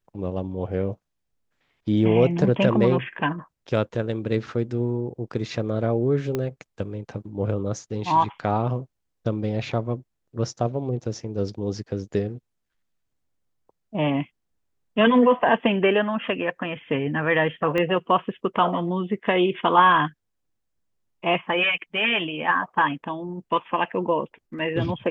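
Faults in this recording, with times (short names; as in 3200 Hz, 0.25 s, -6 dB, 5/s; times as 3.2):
6.35 pop -13 dBFS
17.78 pop -14 dBFS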